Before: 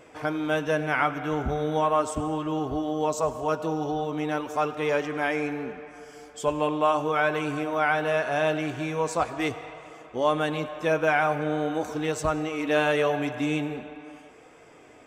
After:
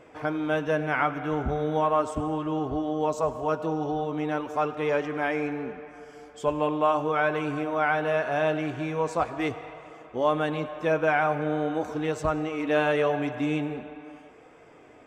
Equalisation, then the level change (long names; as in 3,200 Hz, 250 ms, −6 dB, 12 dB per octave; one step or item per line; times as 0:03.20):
high-shelf EQ 4,000 Hz −10.5 dB
0.0 dB